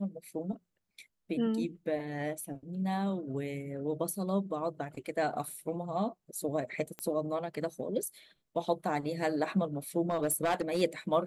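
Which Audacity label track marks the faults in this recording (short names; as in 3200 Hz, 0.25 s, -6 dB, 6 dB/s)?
6.990000	6.990000	pop -23 dBFS
10.090000	10.820000	clipped -24.5 dBFS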